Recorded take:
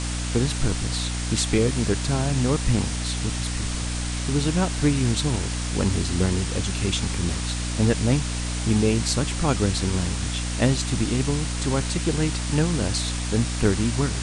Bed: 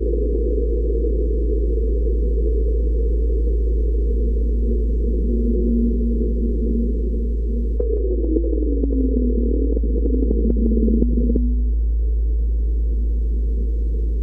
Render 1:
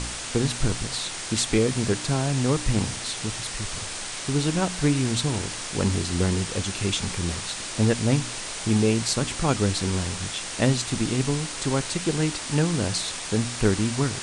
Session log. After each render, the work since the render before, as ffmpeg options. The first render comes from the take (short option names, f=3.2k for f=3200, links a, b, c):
-af "bandreject=f=60:t=h:w=4,bandreject=f=120:t=h:w=4,bandreject=f=180:t=h:w=4,bandreject=f=240:t=h:w=4,bandreject=f=300:t=h:w=4"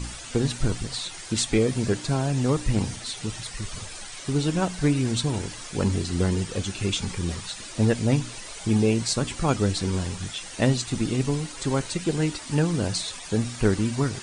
-af "afftdn=nr=11:nf=-34"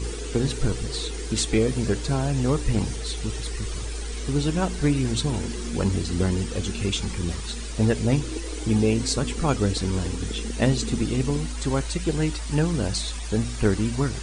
-filter_complex "[1:a]volume=-13.5dB[a];[0:a][a]amix=inputs=2:normalize=0"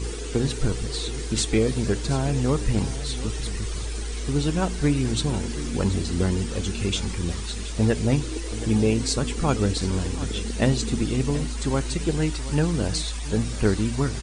-af "aecho=1:1:727:0.178"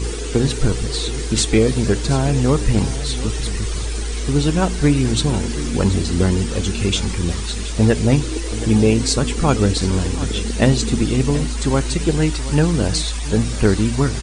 -af "volume=6.5dB,alimiter=limit=-1dB:level=0:latency=1"